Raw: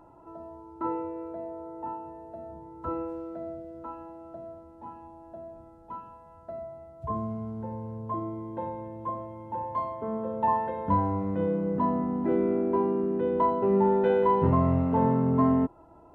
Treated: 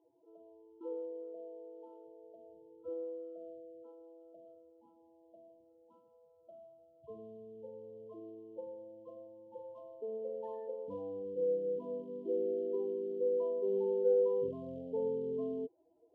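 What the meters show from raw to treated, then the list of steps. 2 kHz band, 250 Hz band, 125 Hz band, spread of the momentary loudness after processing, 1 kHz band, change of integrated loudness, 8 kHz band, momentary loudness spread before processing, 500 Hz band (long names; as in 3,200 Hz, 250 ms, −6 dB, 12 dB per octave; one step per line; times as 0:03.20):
below −30 dB, −18.0 dB, −26.5 dB, 20 LU, −27.5 dB, −9.0 dB, can't be measured, 21 LU, −6.0 dB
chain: spectral peaks only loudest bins 16
floating-point word with a short mantissa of 6 bits
pair of resonant band-passes 1,200 Hz, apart 2.7 octaves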